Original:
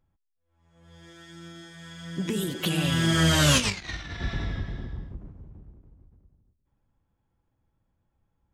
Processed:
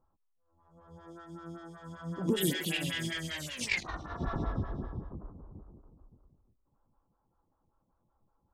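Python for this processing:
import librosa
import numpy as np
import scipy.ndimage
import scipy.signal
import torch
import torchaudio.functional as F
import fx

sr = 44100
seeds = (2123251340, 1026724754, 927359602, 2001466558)

y = fx.high_shelf_res(x, sr, hz=1600.0, db=fx.steps((0.0, -10.5), (2.36, 6.0), (3.82, -10.0)), q=3.0)
y = fx.over_compress(y, sr, threshold_db=-27.0, ratio=-1.0)
y = fx.stagger_phaser(y, sr, hz=5.2)
y = F.gain(torch.from_numpy(y), -2.0).numpy()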